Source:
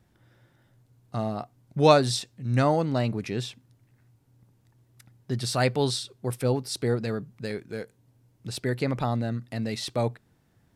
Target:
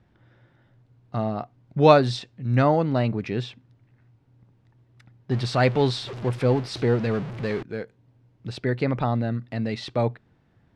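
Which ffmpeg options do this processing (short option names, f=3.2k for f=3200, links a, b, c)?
-filter_complex "[0:a]asettb=1/sr,asplit=3[a][b][c];[a]atrim=end=5.314[d];[b]atrim=start=5.31:end=7.63,asetpts=PTS-STARTPTS,afade=t=in:d=0.004:c=qsin,afade=t=out:st=2.316:d=0.004:c=qsin,aeval=exprs='val(0)+0.5*0.0237*sgn(val(0))':c=same[e];[c]atrim=start=7.626[f];[d][e]acrossfade=d=0.004:c1=hsin:c2=qsin[g];[g][f]acrossfade=d=0.004:c1=qsin:c2=hsin,lowpass=3.3k,volume=3dB"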